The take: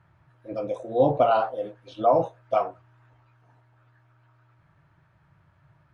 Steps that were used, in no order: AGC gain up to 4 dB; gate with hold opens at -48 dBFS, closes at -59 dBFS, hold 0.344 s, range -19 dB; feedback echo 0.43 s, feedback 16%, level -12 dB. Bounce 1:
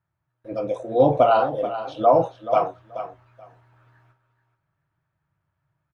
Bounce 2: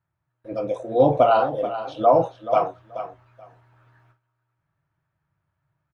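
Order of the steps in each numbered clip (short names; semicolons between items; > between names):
gate with hold > feedback echo > AGC; feedback echo > gate with hold > AGC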